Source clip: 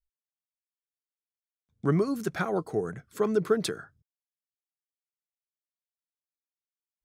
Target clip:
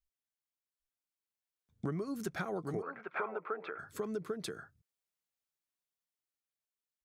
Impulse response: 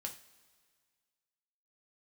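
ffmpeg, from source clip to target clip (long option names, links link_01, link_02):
-filter_complex "[0:a]dynaudnorm=framelen=270:gausssize=13:maxgain=6dB,aecho=1:1:796:0.447,acompressor=threshold=-32dB:ratio=6,asplit=3[link_01][link_02][link_03];[link_01]afade=type=out:start_time=2.81:duration=0.02[link_04];[link_02]highpass=480,equalizer=frequency=560:width_type=q:width=4:gain=5,equalizer=frequency=900:width_type=q:width=4:gain=8,equalizer=frequency=1300:width_type=q:width=4:gain=9,equalizer=frequency=2400:width_type=q:width=4:gain=8,lowpass=frequency=2500:width=0.5412,lowpass=frequency=2500:width=1.3066,afade=type=in:start_time=2.81:duration=0.02,afade=type=out:start_time=3.78:duration=0.02[link_05];[link_03]afade=type=in:start_time=3.78:duration=0.02[link_06];[link_04][link_05][link_06]amix=inputs=3:normalize=0,volume=-3dB"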